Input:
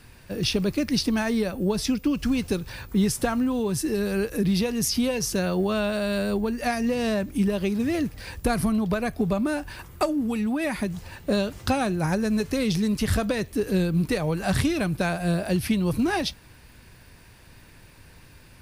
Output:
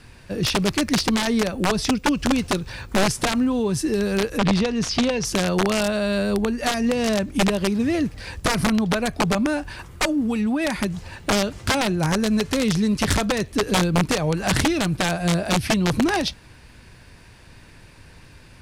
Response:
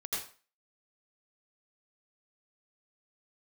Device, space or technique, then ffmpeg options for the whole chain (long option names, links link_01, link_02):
overflowing digital effects unit: -filter_complex "[0:a]aeval=exprs='(mod(6.68*val(0)+1,2)-1)/6.68':channel_layout=same,lowpass=8800,asettb=1/sr,asplit=3[link_01][link_02][link_03];[link_01]atrim=end=4.384[link_04];[link_02]atrim=start=4.38:end=5.25,asetpts=PTS-STARTPTS,afade=type=in:duration=0.004:curve=qsin,afade=type=out:start_time=0.866:duration=0.004:curve=qsin,lowpass=5500[link_05];[link_03]atrim=start=5.246[link_06];[link_04][link_05]acrossfade=duration=0.004:curve1=hsin:curve2=qsin[link_07];[link_07][link_06]acrossfade=duration=0.004:curve1=qsin:curve2=hsin,volume=3.5dB"